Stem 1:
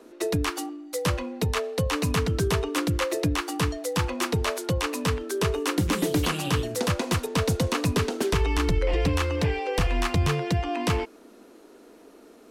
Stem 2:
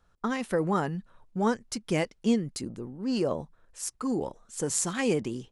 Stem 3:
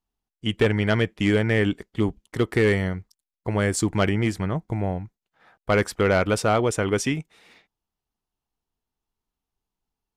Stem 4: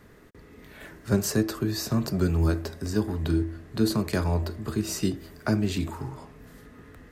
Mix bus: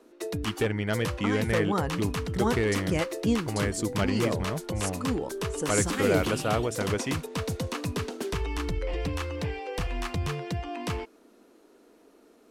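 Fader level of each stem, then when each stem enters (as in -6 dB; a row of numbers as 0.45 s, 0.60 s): -7.0 dB, -1.5 dB, -7.0 dB, mute; 0.00 s, 1.00 s, 0.00 s, mute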